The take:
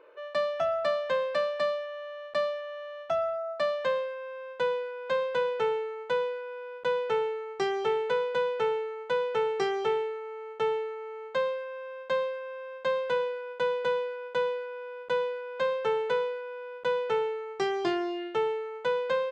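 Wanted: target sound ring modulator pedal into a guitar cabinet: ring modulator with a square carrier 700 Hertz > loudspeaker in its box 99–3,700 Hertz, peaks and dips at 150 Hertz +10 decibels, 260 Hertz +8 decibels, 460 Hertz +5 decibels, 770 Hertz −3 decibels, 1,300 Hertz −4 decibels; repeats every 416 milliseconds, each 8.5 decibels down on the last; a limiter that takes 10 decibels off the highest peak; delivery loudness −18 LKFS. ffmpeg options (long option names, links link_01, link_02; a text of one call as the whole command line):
ffmpeg -i in.wav -af "alimiter=level_in=2.5dB:limit=-24dB:level=0:latency=1,volume=-2.5dB,aecho=1:1:416|832|1248|1664:0.376|0.143|0.0543|0.0206,aeval=exprs='val(0)*sgn(sin(2*PI*700*n/s))':channel_layout=same,highpass=99,equalizer=frequency=150:width_type=q:width=4:gain=10,equalizer=frequency=260:width_type=q:width=4:gain=8,equalizer=frequency=460:width_type=q:width=4:gain=5,equalizer=frequency=770:width_type=q:width=4:gain=-3,equalizer=frequency=1300:width_type=q:width=4:gain=-4,lowpass=frequency=3700:width=0.5412,lowpass=frequency=3700:width=1.3066,volume=13.5dB" out.wav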